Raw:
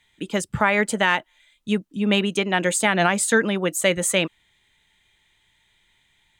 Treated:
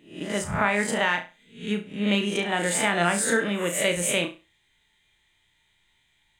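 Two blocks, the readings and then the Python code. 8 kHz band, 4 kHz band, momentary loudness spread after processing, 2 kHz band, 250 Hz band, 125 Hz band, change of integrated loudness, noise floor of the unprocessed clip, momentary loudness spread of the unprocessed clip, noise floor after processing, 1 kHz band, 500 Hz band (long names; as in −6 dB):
−2.5 dB, −3.0 dB, 9 LU, −3.5 dB, −3.5 dB, −3.5 dB, −3.5 dB, −65 dBFS, 8 LU, −68 dBFS, −3.5 dB, −4.0 dB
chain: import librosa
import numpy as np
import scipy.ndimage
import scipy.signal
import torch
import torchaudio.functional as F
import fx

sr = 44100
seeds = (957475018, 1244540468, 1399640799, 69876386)

y = fx.spec_swells(x, sr, rise_s=0.44)
y = fx.room_flutter(y, sr, wall_m=5.9, rt60_s=0.29)
y = y * librosa.db_to_amplitude(-6.0)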